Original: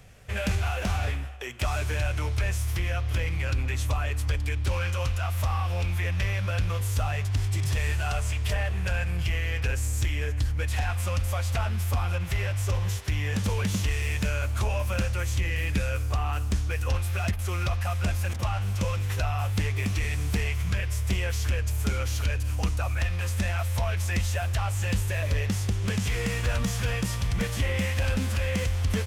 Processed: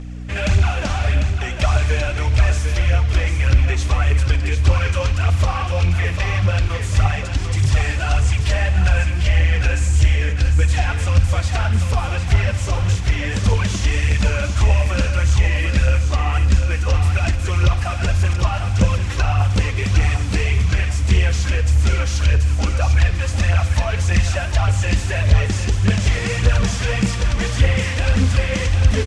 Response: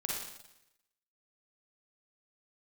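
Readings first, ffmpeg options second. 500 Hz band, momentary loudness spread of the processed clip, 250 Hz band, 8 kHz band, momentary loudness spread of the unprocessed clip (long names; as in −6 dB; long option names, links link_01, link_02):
+8.0 dB, 3 LU, +8.0 dB, +6.5 dB, 1 LU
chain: -filter_complex "[0:a]aphaser=in_gain=1:out_gain=1:delay=3.8:decay=0.56:speed=1.7:type=triangular,lowpass=frequency=8100:width=0.5412,lowpass=frequency=8100:width=1.3066,aeval=exprs='val(0)+0.0178*(sin(2*PI*60*n/s)+sin(2*PI*2*60*n/s)/2+sin(2*PI*3*60*n/s)/3+sin(2*PI*4*60*n/s)/4+sin(2*PI*5*60*n/s)/5)':channel_layout=same,aecho=1:1:748|1496|2244|2992:0.422|0.152|0.0547|0.0197,asplit=2[link_01][link_02];[1:a]atrim=start_sample=2205[link_03];[link_02][link_03]afir=irnorm=-1:irlink=0,volume=-13.5dB[link_04];[link_01][link_04]amix=inputs=2:normalize=0,volume=4.5dB"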